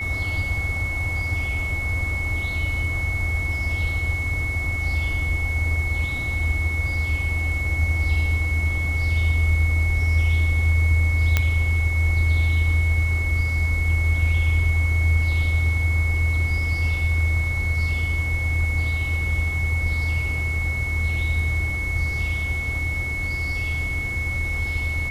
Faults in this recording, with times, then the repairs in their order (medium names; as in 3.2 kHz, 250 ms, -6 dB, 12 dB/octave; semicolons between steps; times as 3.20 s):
whine 2.2 kHz -26 dBFS
11.37 s: pop -5 dBFS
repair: de-click; band-stop 2.2 kHz, Q 30